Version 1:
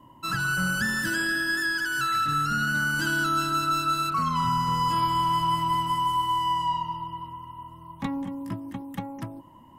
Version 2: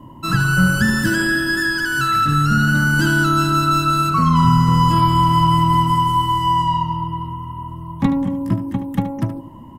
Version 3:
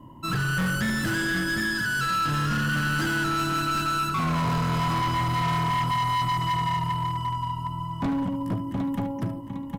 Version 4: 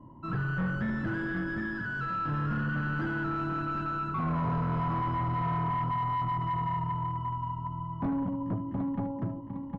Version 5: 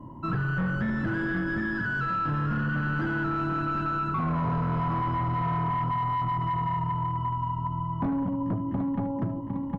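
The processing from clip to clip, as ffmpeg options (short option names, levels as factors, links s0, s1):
-filter_complex "[0:a]lowshelf=f=500:g=11,asplit=2[s0][s1];[s1]aecho=0:1:74:0.266[s2];[s0][s2]amix=inputs=2:normalize=0,volume=1.88"
-af "aecho=1:1:756|1512|2268|3024|3780:0.398|0.163|0.0669|0.0274|0.0112,volume=6.31,asoftclip=hard,volume=0.158,volume=0.473"
-af "lowpass=1300,volume=0.631"
-af "acompressor=threshold=0.0224:ratio=6,volume=2.37"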